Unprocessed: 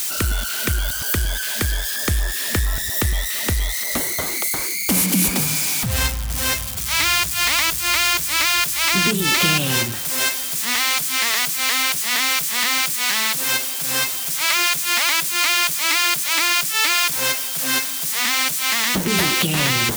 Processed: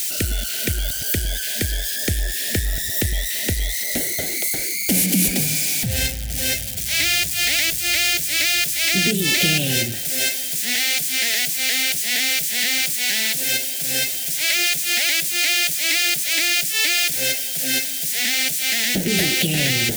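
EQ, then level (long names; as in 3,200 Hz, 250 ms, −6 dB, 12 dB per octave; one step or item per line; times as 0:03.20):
Butterworth band-reject 1,100 Hz, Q 1.1
parametric band 63 Hz −7 dB 0.37 octaves
0.0 dB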